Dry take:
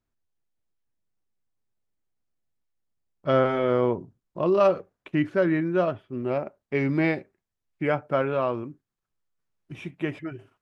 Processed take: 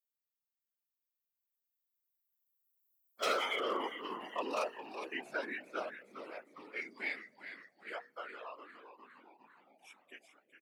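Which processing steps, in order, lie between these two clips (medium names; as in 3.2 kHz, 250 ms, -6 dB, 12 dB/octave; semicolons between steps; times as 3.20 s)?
expander on every frequency bin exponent 1.5; Doppler pass-by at 3.10 s, 8 m/s, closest 3.6 m; on a send at -20.5 dB: reverberation RT60 3.3 s, pre-delay 4 ms; on the sum: reverb removal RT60 1.2 s; in parallel at 0 dB: compressor with a negative ratio -37 dBFS, ratio -1; on the sum: differentiator; frequency-shifting echo 407 ms, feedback 62%, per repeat -130 Hz, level -9.5 dB; wavefolder -39 dBFS; whisper effect; high-pass 250 Hz 24 dB/octave; hum notches 60/120/180/240/300/360/420/480 Hz; trim +14 dB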